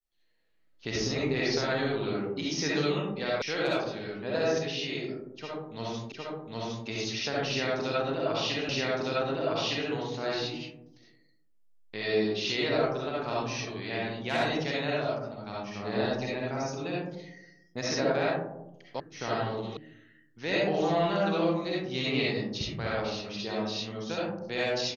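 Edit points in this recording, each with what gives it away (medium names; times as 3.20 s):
3.42 s: sound stops dead
6.12 s: repeat of the last 0.76 s
8.69 s: repeat of the last 1.21 s
19.00 s: sound stops dead
19.77 s: sound stops dead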